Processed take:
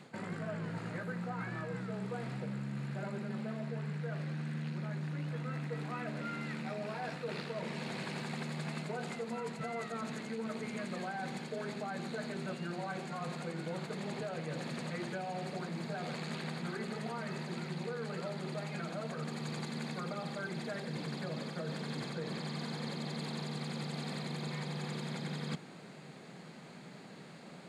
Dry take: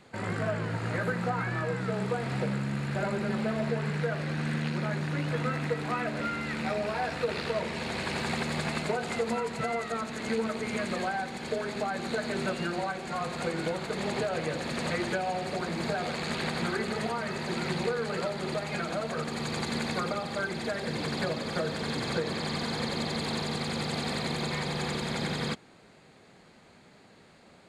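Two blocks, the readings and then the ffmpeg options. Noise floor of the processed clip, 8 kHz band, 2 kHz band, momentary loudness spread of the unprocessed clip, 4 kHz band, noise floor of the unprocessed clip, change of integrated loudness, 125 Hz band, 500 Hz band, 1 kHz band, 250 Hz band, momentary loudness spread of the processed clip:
-51 dBFS, -10.0 dB, -10.0 dB, 2 LU, -10.0 dB, -56 dBFS, -8.5 dB, -5.5 dB, -9.5 dB, -9.5 dB, -6.5 dB, 1 LU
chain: -af "lowshelf=f=110:t=q:w=3:g=-11,areverse,acompressor=threshold=0.01:ratio=8,areverse,volume=1.41"

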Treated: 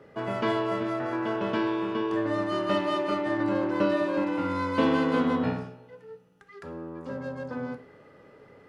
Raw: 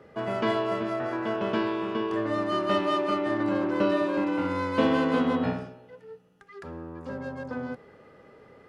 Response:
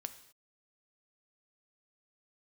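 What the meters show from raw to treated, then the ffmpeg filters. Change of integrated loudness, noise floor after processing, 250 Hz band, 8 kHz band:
-0.5 dB, -54 dBFS, 0.0 dB, no reading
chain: -filter_complex "[1:a]atrim=start_sample=2205,asetrate=88200,aresample=44100[s0];[0:a][s0]afir=irnorm=-1:irlink=0,volume=2.66"

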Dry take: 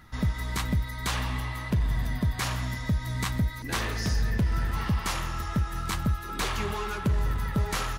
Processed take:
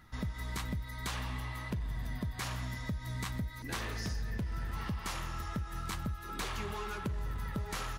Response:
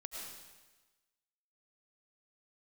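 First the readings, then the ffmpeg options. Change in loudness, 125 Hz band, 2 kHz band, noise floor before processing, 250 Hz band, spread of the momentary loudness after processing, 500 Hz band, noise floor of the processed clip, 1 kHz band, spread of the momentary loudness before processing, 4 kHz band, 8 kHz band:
-9.0 dB, -10.0 dB, -8.0 dB, -37 dBFS, -9.0 dB, 2 LU, -8.0 dB, -45 dBFS, -8.0 dB, 3 LU, -8.5 dB, -8.0 dB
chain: -af "acompressor=threshold=0.0447:ratio=6,volume=0.501"

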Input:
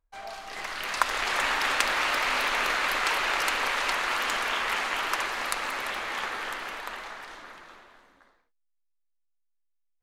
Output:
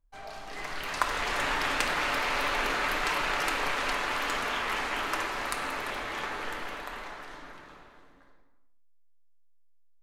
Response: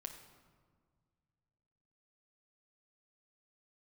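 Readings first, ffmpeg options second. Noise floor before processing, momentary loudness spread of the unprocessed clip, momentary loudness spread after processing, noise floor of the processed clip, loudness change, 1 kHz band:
-74 dBFS, 14 LU, 14 LU, -57 dBFS, -3.0 dB, -2.0 dB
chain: -filter_complex "[0:a]lowshelf=f=420:g=10[s0];[1:a]atrim=start_sample=2205,afade=t=out:st=0.42:d=0.01,atrim=end_sample=18963[s1];[s0][s1]afir=irnorm=-1:irlink=0"

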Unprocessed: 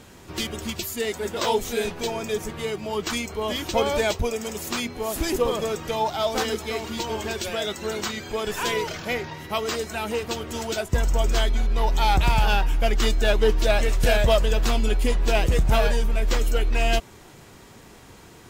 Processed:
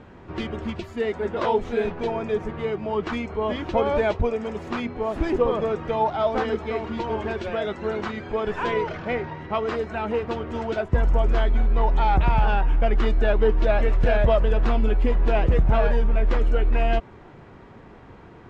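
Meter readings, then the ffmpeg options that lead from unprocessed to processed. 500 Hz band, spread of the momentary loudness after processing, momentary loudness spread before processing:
+1.5 dB, 8 LU, 8 LU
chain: -af "alimiter=limit=0.224:level=0:latency=1:release=117,lowpass=1700,volume=1.33"

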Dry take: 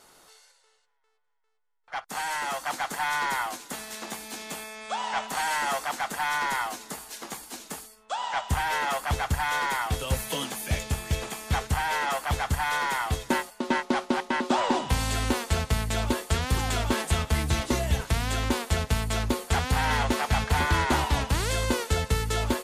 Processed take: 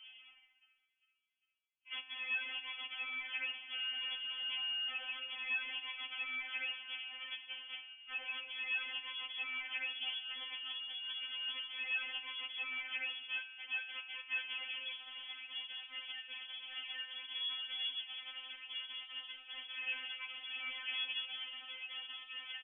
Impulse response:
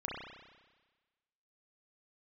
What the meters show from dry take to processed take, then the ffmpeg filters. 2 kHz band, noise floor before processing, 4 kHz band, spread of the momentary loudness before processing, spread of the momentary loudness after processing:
-10.0 dB, -66 dBFS, -3.5 dB, 11 LU, 8 LU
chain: -filter_complex "[0:a]acompressor=threshold=0.0141:ratio=16,aresample=16000,aeval=exprs='0.0112*(abs(mod(val(0)/0.0112+3,4)-2)-1)':c=same,aresample=44100,adynamicsmooth=sensitivity=7:basefreq=820,lowpass=f=3000:t=q:w=0.5098,lowpass=f=3000:t=q:w=0.6013,lowpass=f=3000:t=q:w=0.9,lowpass=f=3000:t=q:w=2.563,afreqshift=-3500,asplit=2[s0][s1];[1:a]atrim=start_sample=2205,asetrate=52920,aresample=44100[s2];[s1][s2]afir=irnorm=-1:irlink=0,volume=0.335[s3];[s0][s3]amix=inputs=2:normalize=0,afftfilt=real='re*3.46*eq(mod(b,12),0)':imag='im*3.46*eq(mod(b,12),0)':win_size=2048:overlap=0.75,volume=2.11"

